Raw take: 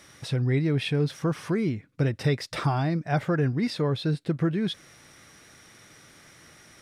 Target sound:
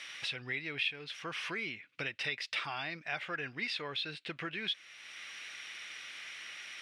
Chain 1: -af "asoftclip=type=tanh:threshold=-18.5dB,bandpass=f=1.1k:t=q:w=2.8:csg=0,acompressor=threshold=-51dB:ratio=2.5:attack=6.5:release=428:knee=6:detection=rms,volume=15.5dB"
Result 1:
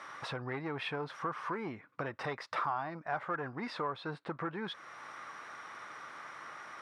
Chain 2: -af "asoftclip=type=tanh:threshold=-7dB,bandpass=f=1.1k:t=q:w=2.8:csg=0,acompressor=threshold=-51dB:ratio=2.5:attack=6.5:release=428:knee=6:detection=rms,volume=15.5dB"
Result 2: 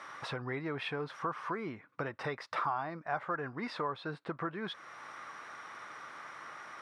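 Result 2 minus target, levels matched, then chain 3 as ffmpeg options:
1000 Hz band +10.0 dB
-af "asoftclip=type=tanh:threshold=-7dB,bandpass=f=2.7k:t=q:w=2.8:csg=0,acompressor=threshold=-51dB:ratio=2.5:attack=6.5:release=428:knee=6:detection=rms,volume=15.5dB"

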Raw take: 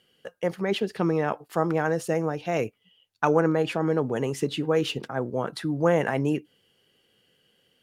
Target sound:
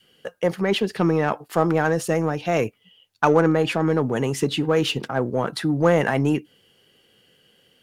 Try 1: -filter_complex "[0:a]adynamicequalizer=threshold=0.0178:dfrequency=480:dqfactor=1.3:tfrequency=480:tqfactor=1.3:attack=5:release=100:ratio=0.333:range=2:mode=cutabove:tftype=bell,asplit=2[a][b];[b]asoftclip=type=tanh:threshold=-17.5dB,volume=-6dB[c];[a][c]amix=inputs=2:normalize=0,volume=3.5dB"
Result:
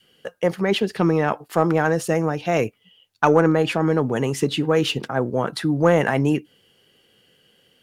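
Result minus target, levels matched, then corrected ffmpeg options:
soft clip: distortion -8 dB
-filter_complex "[0:a]adynamicequalizer=threshold=0.0178:dfrequency=480:dqfactor=1.3:tfrequency=480:tqfactor=1.3:attack=5:release=100:ratio=0.333:range=2:mode=cutabove:tftype=bell,asplit=2[a][b];[b]asoftclip=type=tanh:threshold=-26.5dB,volume=-6dB[c];[a][c]amix=inputs=2:normalize=0,volume=3.5dB"

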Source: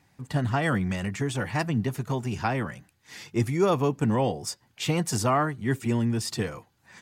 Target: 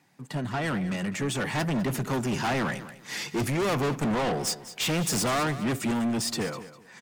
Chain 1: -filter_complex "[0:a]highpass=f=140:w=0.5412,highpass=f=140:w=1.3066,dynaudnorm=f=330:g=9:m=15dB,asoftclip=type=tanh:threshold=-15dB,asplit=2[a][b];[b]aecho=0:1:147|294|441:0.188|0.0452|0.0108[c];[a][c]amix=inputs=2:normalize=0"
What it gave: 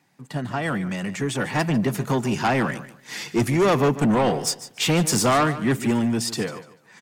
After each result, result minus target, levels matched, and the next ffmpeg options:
echo 55 ms early; soft clip: distortion -6 dB
-filter_complex "[0:a]highpass=f=140:w=0.5412,highpass=f=140:w=1.3066,dynaudnorm=f=330:g=9:m=15dB,asoftclip=type=tanh:threshold=-15dB,asplit=2[a][b];[b]aecho=0:1:202|404|606:0.188|0.0452|0.0108[c];[a][c]amix=inputs=2:normalize=0"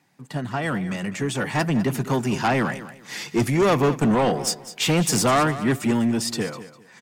soft clip: distortion -6 dB
-filter_complex "[0:a]highpass=f=140:w=0.5412,highpass=f=140:w=1.3066,dynaudnorm=f=330:g=9:m=15dB,asoftclip=type=tanh:threshold=-24.5dB,asplit=2[a][b];[b]aecho=0:1:202|404|606:0.188|0.0452|0.0108[c];[a][c]amix=inputs=2:normalize=0"

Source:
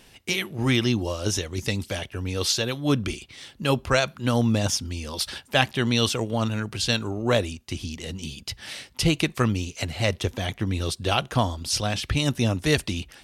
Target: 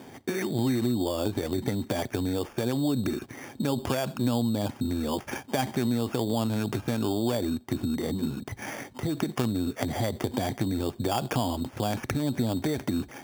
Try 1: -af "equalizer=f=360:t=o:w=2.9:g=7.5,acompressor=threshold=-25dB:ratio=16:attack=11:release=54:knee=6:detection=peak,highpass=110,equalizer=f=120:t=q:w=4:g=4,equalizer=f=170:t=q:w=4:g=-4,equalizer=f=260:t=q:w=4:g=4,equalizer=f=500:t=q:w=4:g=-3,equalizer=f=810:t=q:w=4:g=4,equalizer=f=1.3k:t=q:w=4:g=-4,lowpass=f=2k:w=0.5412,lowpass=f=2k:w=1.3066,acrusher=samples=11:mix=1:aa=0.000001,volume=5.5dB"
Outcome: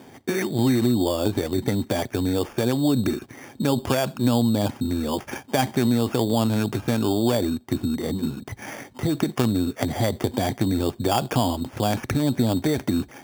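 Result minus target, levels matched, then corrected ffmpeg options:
compressor: peak gain reduction -6 dB
-af "equalizer=f=360:t=o:w=2.9:g=7.5,acompressor=threshold=-31.5dB:ratio=16:attack=11:release=54:knee=6:detection=peak,highpass=110,equalizer=f=120:t=q:w=4:g=4,equalizer=f=170:t=q:w=4:g=-4,equalizer=f=260:t=q:w=4:g=4,equalizer=f=500:t=q:w=4:g=-3,equalizer=f=810:t=q:w=4:g=4,equalizer=f=1.3k:t=q:w=4:g=-4,lowpass=f=2k:w=0.5412,lowpass=f=2k:w=1.3066,acrusher=samples=11:mix=1:aa=0.000001,volume=5.5dB"

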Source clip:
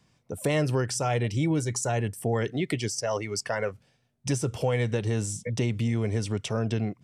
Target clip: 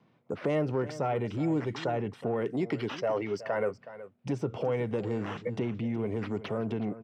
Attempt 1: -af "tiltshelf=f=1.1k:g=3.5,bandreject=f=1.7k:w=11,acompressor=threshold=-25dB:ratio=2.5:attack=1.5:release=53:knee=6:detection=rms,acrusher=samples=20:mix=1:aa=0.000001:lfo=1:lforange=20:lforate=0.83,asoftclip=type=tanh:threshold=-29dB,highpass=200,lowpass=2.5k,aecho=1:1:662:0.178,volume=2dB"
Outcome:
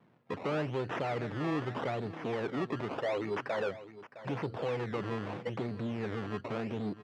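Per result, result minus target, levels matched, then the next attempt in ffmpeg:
echo 0.291 s late; soft clip: distortion +15 dB; decimation with a swept rate: distortion +9 dB
-af "tiltshelf=f=1.1k:g=3.5,bandreject=f=1.7k:w=11,acompressor=threshold=-25dB:ratio=2.5:attack=1.5:release=53:knee=6:detection=rms,acrusher=samples=20:mix=1:aa=0.000001:lfo=1:lforange=20:lforate=0.83,asoftclip=type=tanh:threshold=-29dB,highpass=200,lowpass=2.5k,aecho=1:1:371:0.178,volume=2dB"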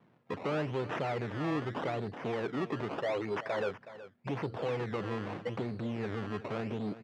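soft clip: distortion +15 dB; decimation with a swept rate: distortion +9 dB
-af "tiltshelf=f=1.1k:g=3.5,bandreject=f=1.7k:w=11,acompressor=threshold=-25dB:ratio=2.5:attack=1.5:release=53:knee=6:detection=rms,acrusher=samples=20:mix=1:aa=0.000001:lfo=1:lforange=20:lforate=0.83,asoftclip=type=tanh:threshold=-18dB,highpass=200,lowpass=2.5k,aecho=1:1:371:0.178,volume=2dB"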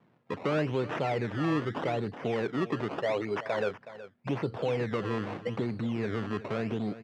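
decimation with a swept rate: distortion +9 dB
-af "tiltshelf=f=1.1k:g=3.5,bandreject=f=1.7k:w=11,acompressor=threshold=-25dB:ratio=2.5:attack=1.5:release=53:knee=6:detection=rms,acrusher=samples=4:mix=1:aa=0.000001:lfo=1:lforange=4:lforate=0.83,asoftclip=type=tanh:threshold=-18dB,highpass=200,lowpass=2.5k,aecho=1:1:371:0.178,volume=2dB"

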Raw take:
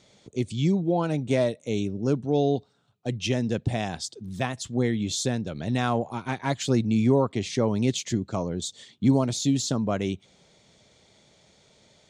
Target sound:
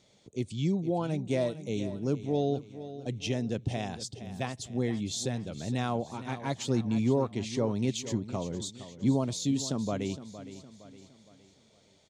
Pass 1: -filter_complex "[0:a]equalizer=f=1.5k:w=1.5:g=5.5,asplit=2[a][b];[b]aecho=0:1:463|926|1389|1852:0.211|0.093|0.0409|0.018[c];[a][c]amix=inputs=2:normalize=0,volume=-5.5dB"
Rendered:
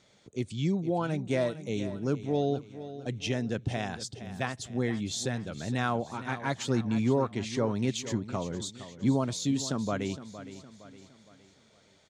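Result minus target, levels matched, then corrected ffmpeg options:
2000 Hz band +5.5 dB
-filter_complex "[0:a]equalizer=f=1.5k:w=1.5:g=-3.5,asplit=2[a][b];[b]aecho=0:1:463|926|1389|1852:0.211|0.093|0.0409|0.018[c];[a][c]amix=inputs=2:normalize=0,volume=-5.5dB"

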